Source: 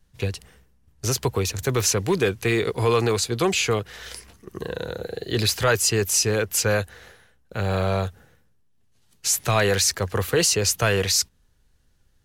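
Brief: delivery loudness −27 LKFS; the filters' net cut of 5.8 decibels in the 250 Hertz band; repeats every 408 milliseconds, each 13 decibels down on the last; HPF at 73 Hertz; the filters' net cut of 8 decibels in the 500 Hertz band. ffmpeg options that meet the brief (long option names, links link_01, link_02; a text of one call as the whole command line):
ffmpeg -i in.wav -af "highpass=73,equalizer=frequency=250:width_type=o:gain=-5.5,equalizer=frequency=500:width_type=o:gain=-8,aecho=1:1:408|816|1224:0.224|0.0493|0.0108,volume=-3dB" out.wav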